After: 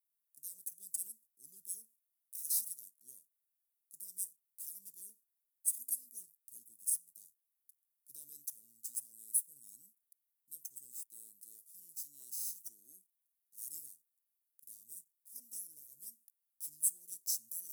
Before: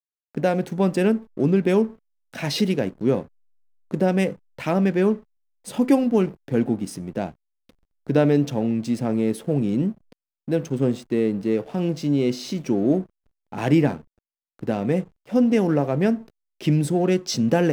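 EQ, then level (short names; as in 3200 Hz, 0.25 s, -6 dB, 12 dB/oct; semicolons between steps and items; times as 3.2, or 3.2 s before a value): inverse Chebyshev high-pass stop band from 2600 Hz, stop band 70 dB; +13.0 dB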